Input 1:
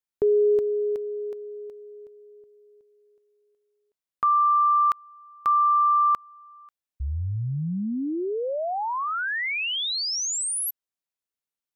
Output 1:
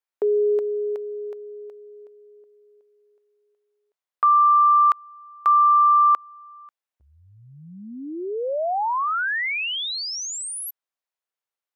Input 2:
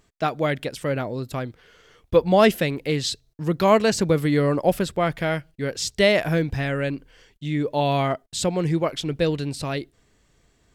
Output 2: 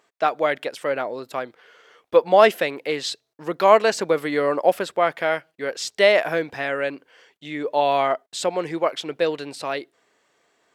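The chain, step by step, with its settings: HPF 550 Hz 12 dB/oct; high shelf 2900 Hz -10.5 dB; gain +6 dB

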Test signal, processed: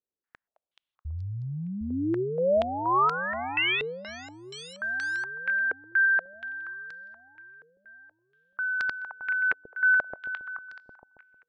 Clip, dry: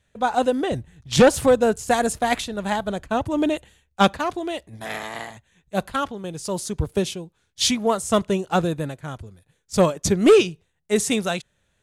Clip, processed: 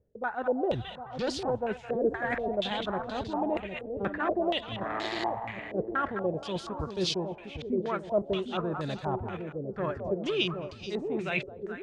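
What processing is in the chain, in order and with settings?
reverse; compressor 10:1, threshold -32 dBFS; reverse; split-band echo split 670 Hz, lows 0.757 s, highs 0.214 s, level -5.5 dB; dynamic EQ 370 Hz, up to +6 dB, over -53 dBFS, Q 6.8; stepped low-pass 4.2 Hz 450–4600 Hz

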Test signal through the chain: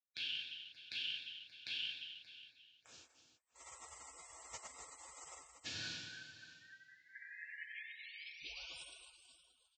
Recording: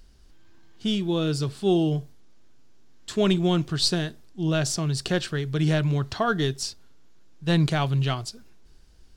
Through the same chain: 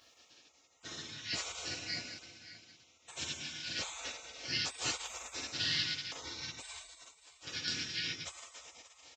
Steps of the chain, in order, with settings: four-band scrambler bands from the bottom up 4123; graphic EQ 125/500/1000/2000/4000 Hz +5/-7/-11/-5/+9 dB; downsampling 16000 Hz; Butterworth band-stop 2000 Hz, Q 6; compressor 5:1, threshold -32 dBFS; HPF 89 Hz 24 dB/oct; high shelf 2100 Hz -9.5 dB; feedback echo 0.579 s, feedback 16%, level -15.5 dB; plate-style reverb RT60 1.5 s, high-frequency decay 1×, DRR -7.5 dB; spectral gate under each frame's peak -25 dB weak; notch comb 200 Hz; gain +8 dB

